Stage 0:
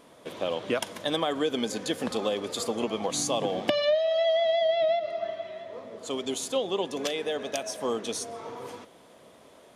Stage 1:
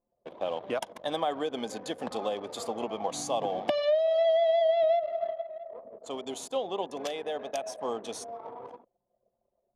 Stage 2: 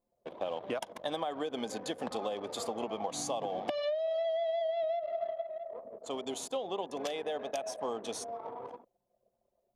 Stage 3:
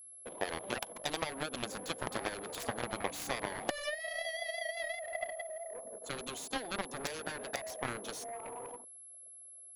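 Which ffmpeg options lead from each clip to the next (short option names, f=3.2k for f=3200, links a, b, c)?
-af "anlmdn=0.631,equalizer=f=770:w=1.5:g=10,volume=-7.5dB"
-af "acompressor=threshold=-31dB:ratio=6"
-af "aeval=exprs='0.106*(cos(1*acos(clip(val(0)/0.106,-1,1)))-cos(1*PI/2))+0.0299*(cos(7*acos(clip(val(0)/0.106,-1,1)))-cos(7*PI/2))':c=same,aeval=exprs='val(0)+0.00316*sin(2*PI*11000*n/s)':c=same"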